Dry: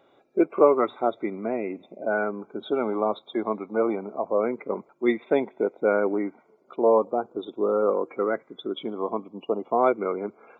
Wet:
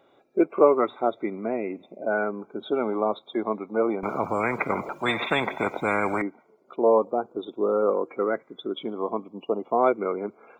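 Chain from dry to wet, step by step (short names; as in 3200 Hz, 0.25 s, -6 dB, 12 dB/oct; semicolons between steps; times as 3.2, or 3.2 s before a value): 4.03–6.22 spectral compressor 4:1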